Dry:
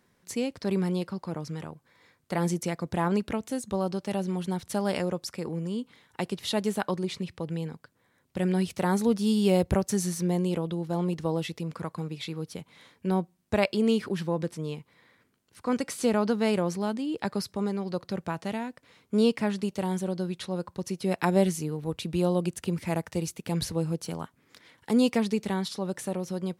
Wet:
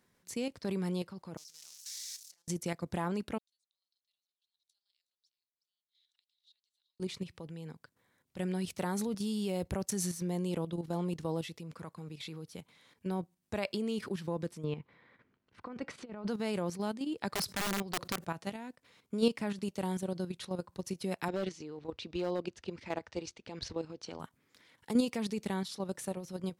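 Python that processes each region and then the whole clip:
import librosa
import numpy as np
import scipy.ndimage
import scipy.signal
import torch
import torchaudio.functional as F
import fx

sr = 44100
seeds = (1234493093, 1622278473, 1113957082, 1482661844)

y = fx.chain(x, sr, fx.crossing_spikes(level_db=-23.5),
    fx.over_compress(threshold_db=-34.0, ratio=-0.5),
    fx.bandpass_q(hz=5700.0, q=2.6), at=(1.37, 2.48))
y = fx.chain(y, sr, fx.gate_flip(shuts_db=-32.0, range_db=-26),
    fx.ladder_bandpass(hz=4200.0, resonance_pct=70),
    fx.echo_single(ms=367, db=-14.0), at=(3.38, 7.0))
y = fx.chain(y, sr, fx.lowpass(hz=2400.0, slope=12),
    fx.over_compress(threshold_db=-30.0, ratio=-0.5), at=(14.64, 16.28))
y = fx.chain(y, sr, fx.overflow_wrap(gain_db=24.5),
    fx.env_flatten(amount_pct=50), at=(17.33, 18.25))
y = fx.chain(y, sr, fx.lowpass(hz=5500.0, slope=24),
    fx.clip_hard(threshold_db=-18.5),
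    fx.peak_eq(hz=160.0, db=-13.0, octaves=0.54), at=(21.28, 24.2))
y = fx.high_shelf(y, sr, hz=3100.0, db=3.5)
y = fx.level_steps(y, sr, step_db=10)
y = y * librosa.db_to_amplitude(-3.5)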